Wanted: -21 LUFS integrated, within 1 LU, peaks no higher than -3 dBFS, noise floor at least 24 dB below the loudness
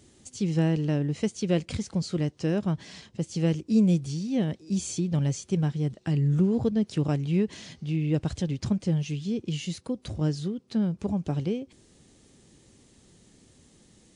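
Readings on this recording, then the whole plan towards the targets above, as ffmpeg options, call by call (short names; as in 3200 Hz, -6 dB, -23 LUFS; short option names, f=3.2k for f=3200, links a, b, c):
loudness -28.0 LUFS; peak -12.0 dBFS; loudness target -21.0 LUFS
-> -af "volume=7dB"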